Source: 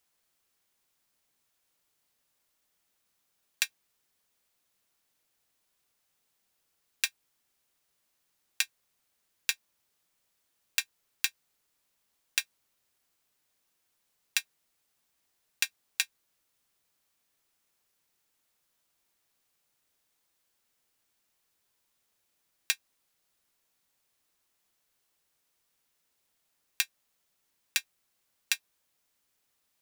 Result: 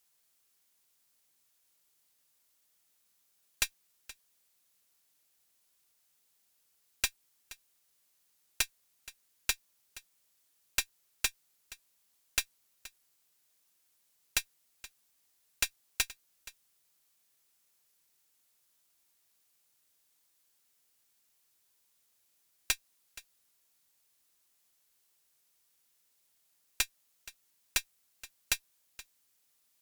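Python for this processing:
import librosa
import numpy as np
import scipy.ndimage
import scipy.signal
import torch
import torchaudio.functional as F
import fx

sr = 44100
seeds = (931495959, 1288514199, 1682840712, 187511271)

y = fx.high_shelf(x, sr, hz=3700.0, db=8.5)
y = 10.0 ** (-12.0 / 20.0) * (np.abs((y / 10.0 ** (-12.0 / 20.0) + 3.0) % 4.0 - 2.0) - 1.0)
y = fx.tube_stage(y, sr, drive_db=16.0, bias=0.6)
y = y + 10.0 ** (-18.5 / 20.0) * np.pad(y, (int(474 * sr / 1000.0), 0))[:len(y)]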